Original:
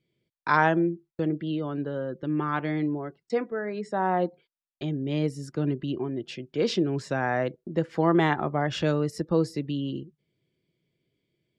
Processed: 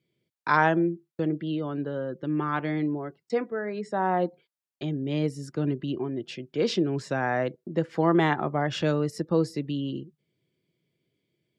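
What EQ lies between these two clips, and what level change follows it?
high-pass filter 86 Hz
0.0 dB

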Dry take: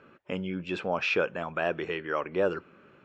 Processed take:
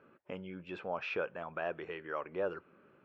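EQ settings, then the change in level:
low-pass filter 1,400 Hz 6 dB per octave
dynamic equaliser 250 Hz, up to −6 dB, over −41 dBFS, Q 0.8
low-shelf EQ 140 Hz −6.5 dB
−5.0 dB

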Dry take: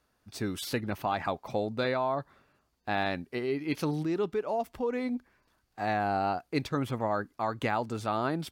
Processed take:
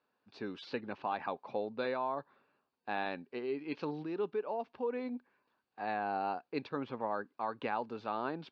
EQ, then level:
high-frequency loss of the air 110 metres
loudspeaker in its box 330–3,900 Hz, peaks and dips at 330 Hz −5 dB, 660 Hz −6 dB, 1,300 Hz −6 dB, 2,000 Hz −10 dB, 3,300 Hz −7 dB
parametric band 620 Hz −2 dB 1.4 octaves
0.0 dB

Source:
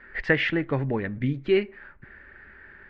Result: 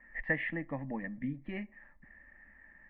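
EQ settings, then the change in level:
transistor ladder low-pass 1,900 Hz, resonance 75%
low-shelf EQ 240 Hz +4.5 dB
phaser with its sweep stopped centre 400 Hz, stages 6
+2.0 dB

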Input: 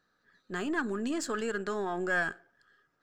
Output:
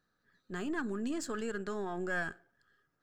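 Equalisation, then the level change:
low-shelf EQ 220 Hz +9 dB
high-shelf EQ 7,400 Hz +4 dB
−6.5 dB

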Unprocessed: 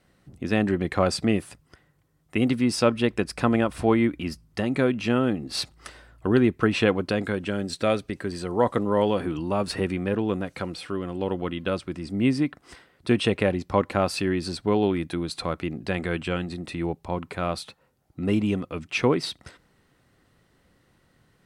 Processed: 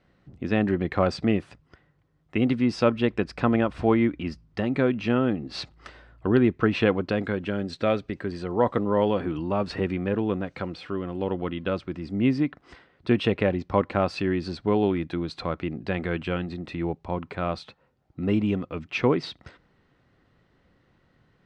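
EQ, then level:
high-frequency loss of the air 160 metres
0.0 dB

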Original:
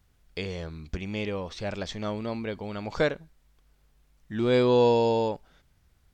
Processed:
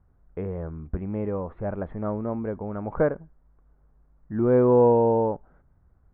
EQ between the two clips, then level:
low-pass filter 1,400 Hz 24 dB per octave
high-frequency loss of the air 360 metres
+4.0 dB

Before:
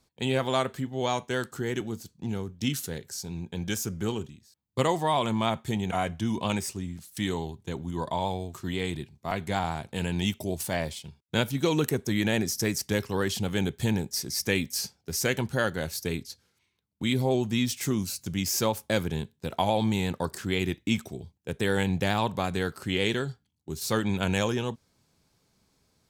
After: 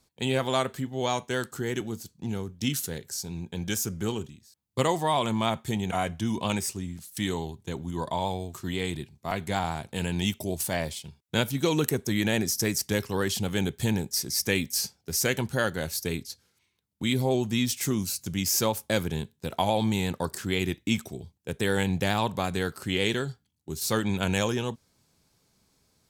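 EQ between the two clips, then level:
parametric band 13,000 Hz +4.5 dB 1.8 octaves
0.0 dB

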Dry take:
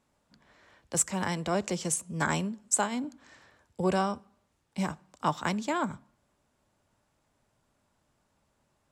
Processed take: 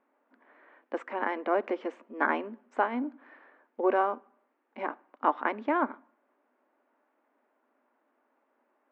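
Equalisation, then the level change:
linear-phase brick-wall high-pass 230 Hz
low-pass filter 2,100 Hz 24 dB per octave
+3.0 dB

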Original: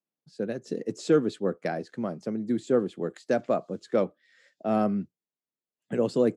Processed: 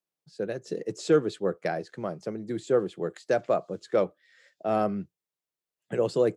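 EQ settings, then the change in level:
parametric band 240 Hz −12.5 dB 0.44 octaves
+1.5 dB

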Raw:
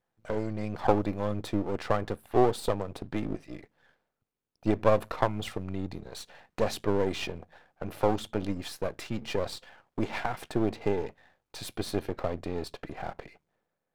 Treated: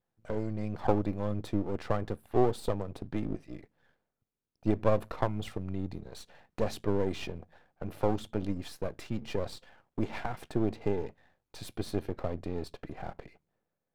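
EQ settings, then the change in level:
low-shelf EQ 430 Hz +7 dB
−6.5 dB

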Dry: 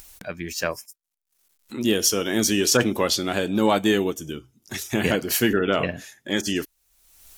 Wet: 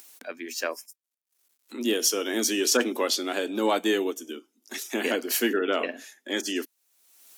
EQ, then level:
Chebyshev high-pass filter 240 Hz, order 5
−3.0 dB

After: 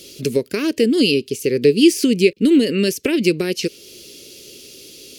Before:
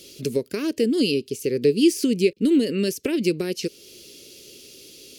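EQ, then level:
dynamic equaliser 2,300 Hz, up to +4 dB, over −43 dBFS, Q 0.93
+5.0 dB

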